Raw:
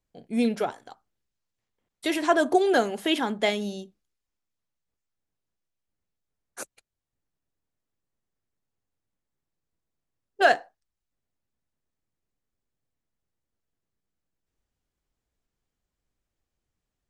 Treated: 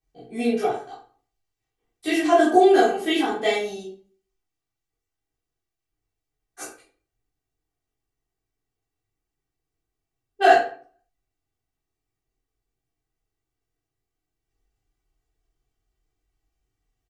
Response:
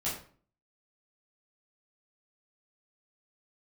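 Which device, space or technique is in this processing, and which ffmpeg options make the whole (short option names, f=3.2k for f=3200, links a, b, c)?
microphone above a desk: -filter_complex "[0:a]aecho=1:1:2.6:0.75[a];[1:a]atrim=start_sample=2205[b];[a][b]afir=irnorm=-1:irlink=0,volume=-4dB"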